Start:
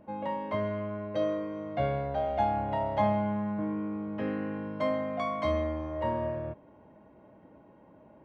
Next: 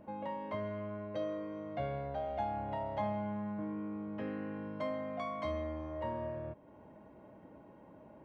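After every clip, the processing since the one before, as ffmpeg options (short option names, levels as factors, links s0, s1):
-af "acompressor=threshold=0.00355:ratio=1.5"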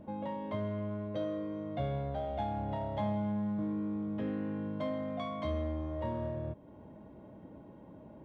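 -filter_complex "[0:a]lowshelf=f=450:g=10.5,asplit=2[s0][s1];[s1]asoftclip=type=hard:threshold=0.0299,volume=0.335[s2];[s0][s2]amix=inputs=2:normalize=0,equalizer=f=3500:t=o:w=0.24:g=11.5,volume=0.562"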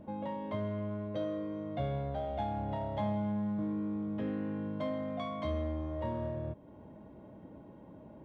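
-af anull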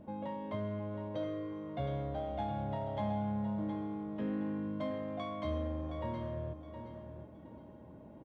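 -af "aecho=1:1:717|1434|2151:0.355|0.0958|0.0259,volume=0.794"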